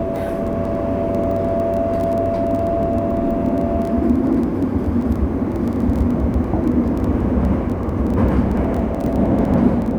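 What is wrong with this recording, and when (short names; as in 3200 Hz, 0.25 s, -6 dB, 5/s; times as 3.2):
crackle 14/s -23 dBFS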